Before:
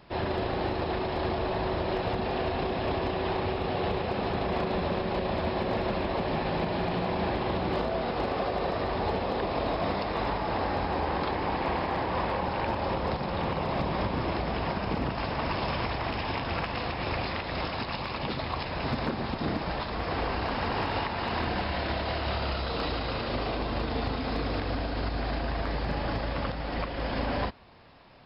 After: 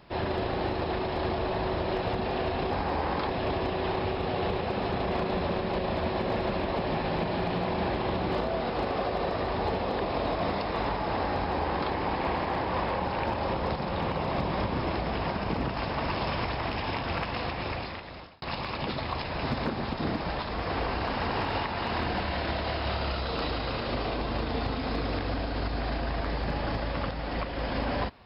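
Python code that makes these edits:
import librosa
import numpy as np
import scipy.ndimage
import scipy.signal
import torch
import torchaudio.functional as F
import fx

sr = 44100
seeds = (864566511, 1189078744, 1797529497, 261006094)

y = fx.edit(x, sr, fx.duplicate(start_s=10.75, length_s=0.59, to_s=2.71),
    fx.fade_out_span(start_s=16.9, length_s=0.93), tone=tone)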